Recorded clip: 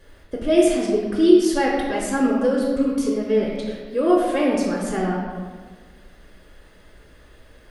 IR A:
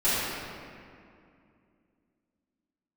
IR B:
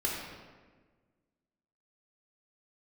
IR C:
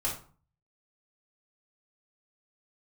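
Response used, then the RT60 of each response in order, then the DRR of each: B; 2.4, 1.4, 0.40 seconds; −15.0, −3.5, −6.0 decibels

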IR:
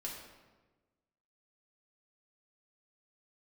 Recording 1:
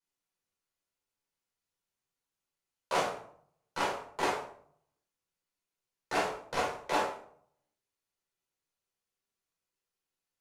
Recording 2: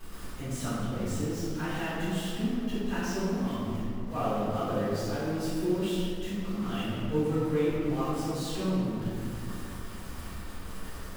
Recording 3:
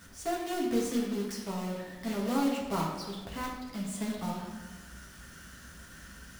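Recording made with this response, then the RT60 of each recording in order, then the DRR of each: 3; 0.60, 2.7, 1.3 seconds; −4.5, −14.5, −3.5 decibels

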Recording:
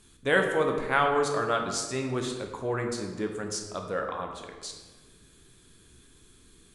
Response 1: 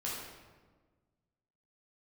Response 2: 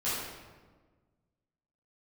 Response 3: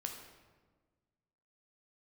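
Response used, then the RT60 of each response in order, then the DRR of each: 3; 1.4, 1.4, 1.4 seconds; −6.5, −12.0, 2.5 decibels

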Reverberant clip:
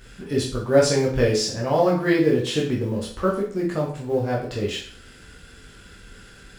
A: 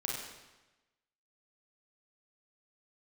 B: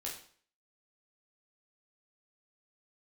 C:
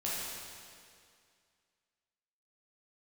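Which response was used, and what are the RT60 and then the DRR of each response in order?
B; 1.1, 0.50, 2.2 seconds; −3.0, −3.5, −8.0 decibels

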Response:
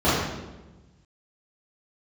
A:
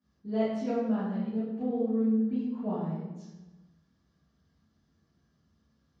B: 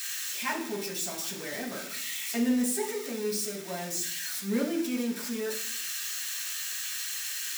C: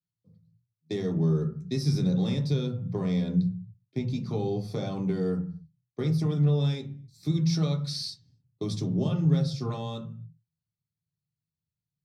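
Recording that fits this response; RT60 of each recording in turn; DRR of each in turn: A; 1.1, 0.65, 0.50 seconds; −14.5, −5.5, 0.5 decibels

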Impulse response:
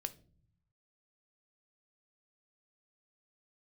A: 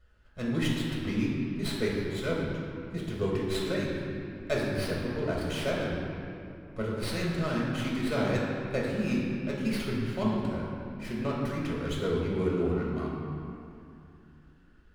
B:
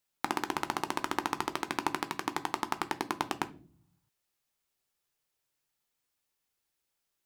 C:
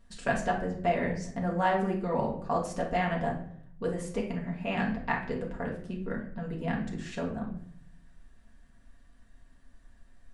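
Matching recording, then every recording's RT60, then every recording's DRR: B; 2.6 s, non-exponential decay, 0.65 s; −4.0, 9.5, −3.0 decibels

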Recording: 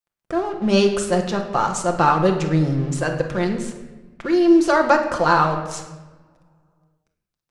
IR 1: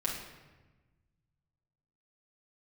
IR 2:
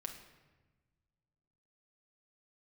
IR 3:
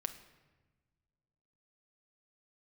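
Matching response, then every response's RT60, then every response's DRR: 2; 1.2, 1.2, 1.3 seconds; −5.0, 2.5, 7.5 decibels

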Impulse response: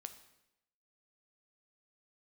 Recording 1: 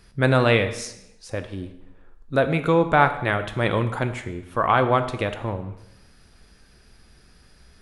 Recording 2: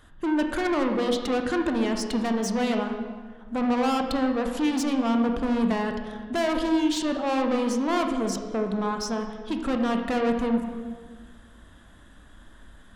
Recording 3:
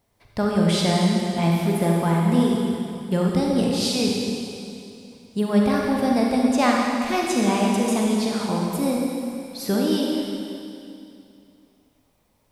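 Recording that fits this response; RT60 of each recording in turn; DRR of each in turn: 1; 0.85, 1.6, 2.6 seconds; 8.5, 4.0, −2.0 decibels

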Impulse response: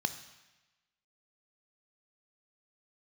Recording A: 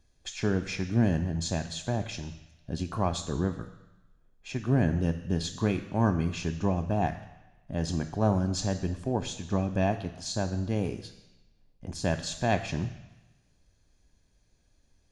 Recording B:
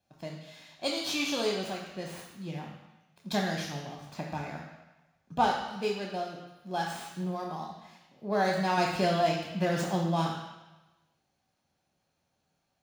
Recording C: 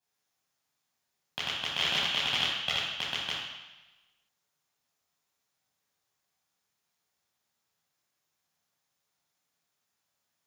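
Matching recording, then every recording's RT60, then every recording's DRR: A; 1.1, 1.1, 1.1 seconds; 9.0, −0.5, −8.0 decibels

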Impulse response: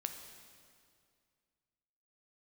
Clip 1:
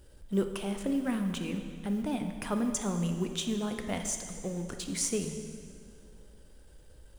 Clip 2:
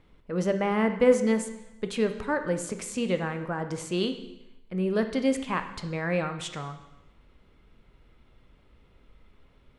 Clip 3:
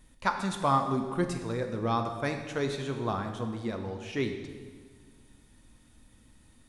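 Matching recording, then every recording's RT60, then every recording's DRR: 1; 2.2, 0.95, 1.6 seconds; 5.5, 7.5, 4.5 decibels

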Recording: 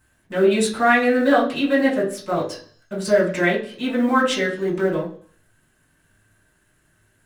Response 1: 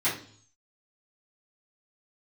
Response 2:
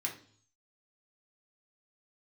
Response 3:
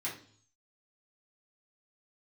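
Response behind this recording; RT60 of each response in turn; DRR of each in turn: 3; 0.50, 0.50, 0.50 seconds; −13.0, −1.5, −7.5 decibels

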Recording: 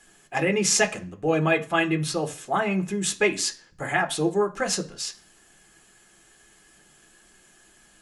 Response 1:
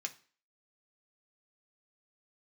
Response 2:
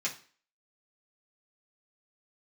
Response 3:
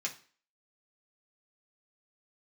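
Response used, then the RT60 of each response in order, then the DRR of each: 1; 0.40, 0.40, 0.40 seconds; 3.5, −6.5, −2.5 decibels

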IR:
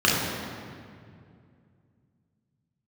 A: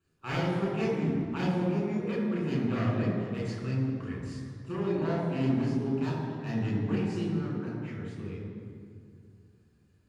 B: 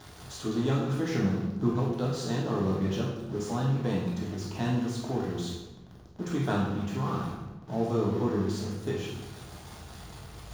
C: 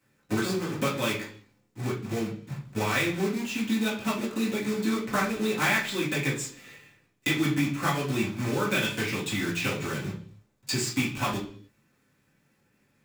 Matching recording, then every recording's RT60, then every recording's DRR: A; 2.3, 1.1, 0.50 seconds; −5.5, −4.0, −7.5 decibels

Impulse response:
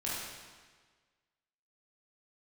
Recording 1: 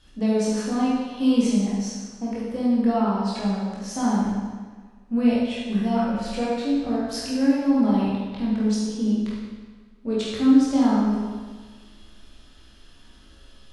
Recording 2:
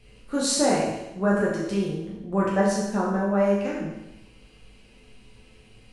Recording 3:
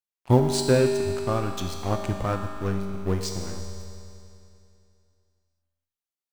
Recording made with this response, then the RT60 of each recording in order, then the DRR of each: 1; 1.5, 0.95, 2.7 seconds; −7.5, −5.5, 2.5 decibels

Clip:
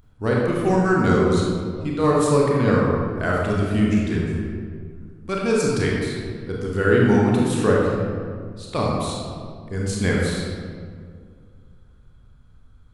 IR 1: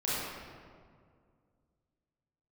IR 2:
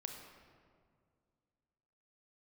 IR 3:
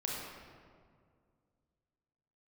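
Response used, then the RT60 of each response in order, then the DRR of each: 3; 2.1, 2.1, 2.1 seconds; −10.0, 3.0, −3.5 decibels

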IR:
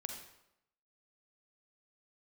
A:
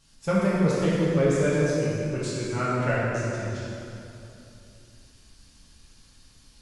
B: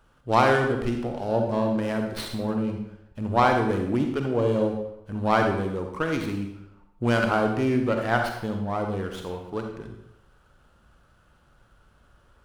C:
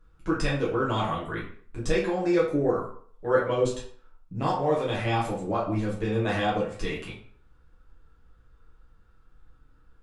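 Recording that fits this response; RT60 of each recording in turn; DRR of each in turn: B; 2.9, 0.85, 0.50 seconds; −9.0, 3.5, −7.0 decibels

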